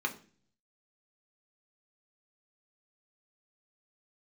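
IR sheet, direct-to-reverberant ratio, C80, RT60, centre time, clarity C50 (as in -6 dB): 2.0 dB, 19.0 dB, 0.40 s, 9 ms, 14.5 dB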